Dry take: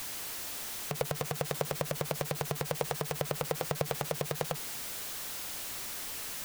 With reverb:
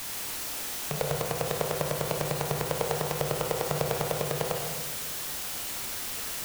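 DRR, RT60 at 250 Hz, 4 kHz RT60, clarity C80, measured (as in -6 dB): 0.5 dB, 1.7 s, 1.2 s, 4.5 dB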